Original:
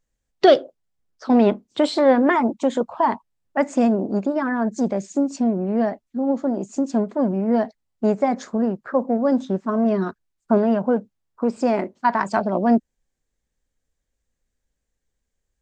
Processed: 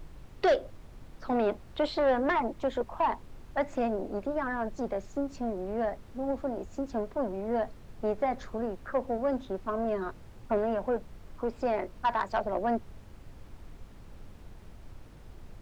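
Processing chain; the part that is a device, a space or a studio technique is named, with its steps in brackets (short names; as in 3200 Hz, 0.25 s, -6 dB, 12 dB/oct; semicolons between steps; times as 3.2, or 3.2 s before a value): aircraft cabin announcement (BPF 370–3700 Hz; soft clip -12.5 dBFS, distortion -15 dB; brown noise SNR 13 dB); gain -6 dB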